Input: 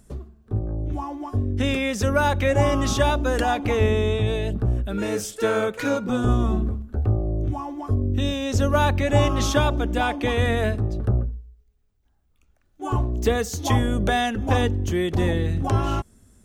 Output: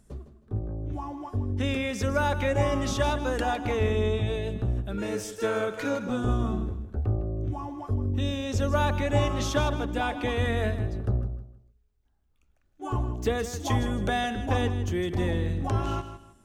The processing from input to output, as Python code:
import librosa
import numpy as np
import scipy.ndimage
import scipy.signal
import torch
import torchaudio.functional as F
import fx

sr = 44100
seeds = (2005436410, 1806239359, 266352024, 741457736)

p1 = fx.high_shelf(x, sr, hz=10000.0, db=-4.5)
p2 = p1 + fx.echo_feedback(p1, sr, ms=158, feedback_pct=28, wet_db=-11.5, dry=0)
y = F.gain(torch.from_numpy(p2), -5.5).numpy()